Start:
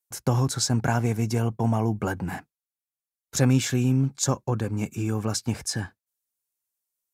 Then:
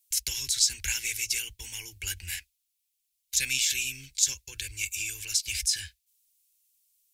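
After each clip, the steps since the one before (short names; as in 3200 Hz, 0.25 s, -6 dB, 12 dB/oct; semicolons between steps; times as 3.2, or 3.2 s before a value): inverse Chebyshev band-stop 110–1300 Hz, stop band 40 dB; in parallel at +2 dB: negative-ratio compressor -38 dBFS, ratio -0.5; on the sum: gain +3 dB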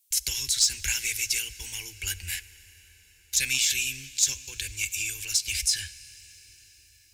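soft clip -12.5 dBFS, distortion -22 dB; on a send at -16 dB: reverb RT60 6.2 s, pre-delay 5 ms; on the sum: gain +2.5 dB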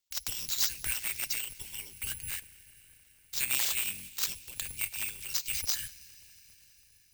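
cycle switcher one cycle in 3, inverted; careless resampling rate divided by 4×, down filtered, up zero stuff; gain -7.5 dB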